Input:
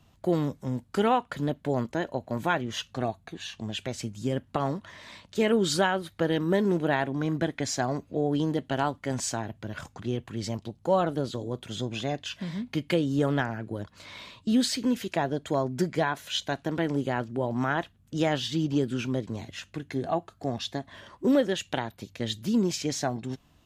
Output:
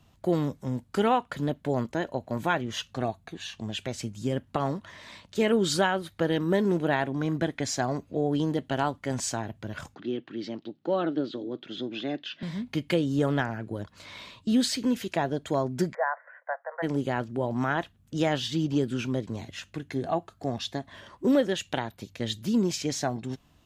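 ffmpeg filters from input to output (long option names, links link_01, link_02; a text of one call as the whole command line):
ffmpeg -i in.wav -filter_complex "[0:a]asettb=1/sr,asplit=3[link_01][link_02][link_03];[link_01]atrim=end=9.954[link_04];[link_02]atrim=start=9.95:end=12.43,asetpts=PTS-STARTPTS,afade=type=in:duration=0.004:curve=qsin,afade=type=out:start_time=2.476:duration=0.004:curve=qsin,highpass=frequency=180:width=0.5412,highpass=frequency=180:width=1.3066,equalizer=frequency=200:width_type=q:width=4:gain=-5,equalizer=frequency=310:width_type=q:width=4:gain=7,equalizer=frequency=490:width_type=q:width=4:gain=-4,equalizer=frequency=710:width_type=q:width=4:gain=-5,equalizer=frequency=1000:width_type=q:width=4:gain=-9,equalizer=frequency=2300:width_type=q:width=4:gain=-3,lowpass=frequency=4200:width=0.5412,lowpass=frequency=4200:width=1.3066[link_05];[link_03]atrim=start=12.426[link_06];[link_04][link_05]acrossfade=duration=0.004:curve1=hsin:curve2=qsin[link_07];[link_07][link_06]acrossfade=duration=0.004:curve1=qsin:curve2=hsin,asplit=3[link_08][link_09][link_10];[link_08]afade=type=out:start_time=15.93:duration=0.02[link_11];[link_09]asuperpass=centerf=990:order=20:qfactor=0.68,afade=type=in:start_time=15.93:duration=0.02,afade=type=out:start_time=16.82:duration=0.02[link_12];[link_10]afade=type=in:start_time=16.82:duration=0.02[link_13];[link_11][link_12][link_13]amix=inputs=3:normalize=0" out.wav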